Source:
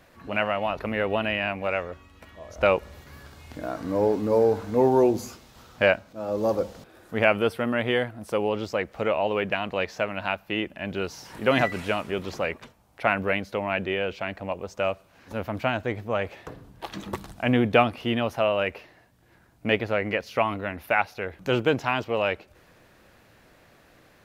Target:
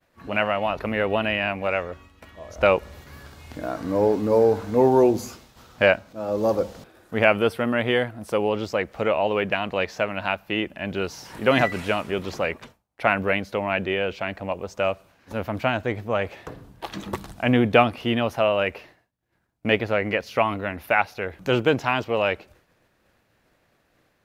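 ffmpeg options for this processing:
-af "agate=range=0.0224:threshold=0.00447:ratio=3:detection=peak,volume=1.33"

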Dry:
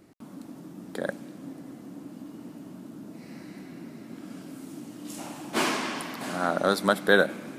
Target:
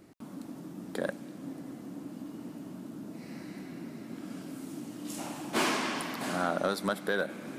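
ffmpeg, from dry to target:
-af "alimiter=limit=0.168:level=0:latency=1:release=447,asoftclip=type=tanh:threshold=0.133"

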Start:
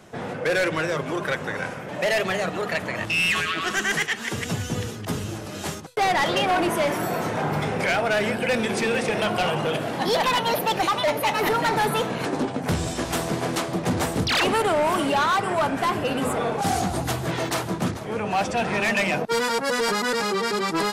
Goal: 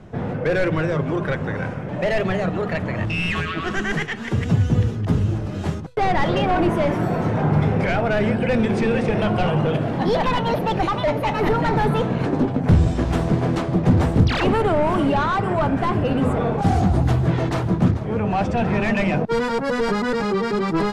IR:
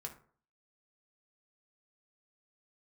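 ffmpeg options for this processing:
-af "aemphasis=mode=reproduction:type=riaa"

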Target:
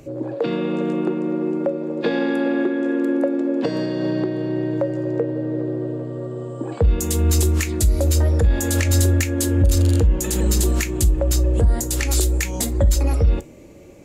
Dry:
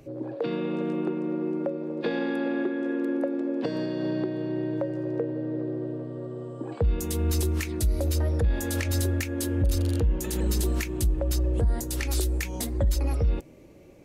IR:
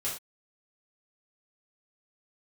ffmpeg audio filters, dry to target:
-filter_complex "[0:a]equalizer=f=7200:t=o:w=0.31:g=8,asplit=2[s0][s1];[1:a]atrim=start_sample=2205,atrim=end_sample=3087[s2];[s1][s2]afir=irnorm=-1:irlink=0,volume=0.178[s3];[s0][s3]amix=inputs=2:normalize=0,volume=2"

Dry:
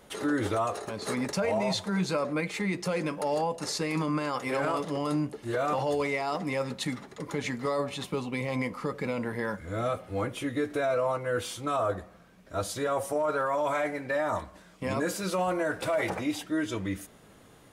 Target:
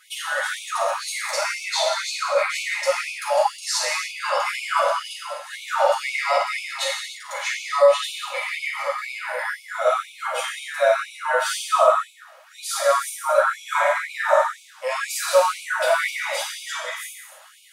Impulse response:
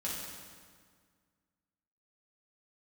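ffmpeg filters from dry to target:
-filter_complex "[0:a]lowshelf=f=490:g=4.5[s0];[1:a]atrim=start_sample=2205,afade=t=out:st=0.39:d=0.01,atrim=end_sample=17640[s1];[s0][s1]afir=irnorm=-1:irlink=0,afftfilt=real='re*gte(b*sr/1024,490*pow(2200/490,0.5+0.5*sin(2*PI*2*pts/sr)))':imag='im*gte(b*sr/1024,490*pow(2200/490,0.5+0.5*sin(2*PI*2*pts/sr)))':win_size=1024:overlap=0.75,volume=2.82"

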